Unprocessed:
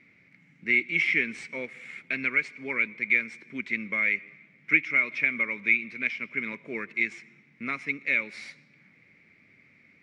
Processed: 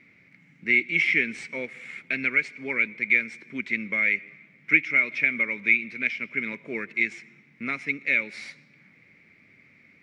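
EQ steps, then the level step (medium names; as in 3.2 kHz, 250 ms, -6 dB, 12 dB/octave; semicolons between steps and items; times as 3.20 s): dynamic bell 1.1 kHz, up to -7 dB, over -52 dBFS, Q 4.1; +2.5 dB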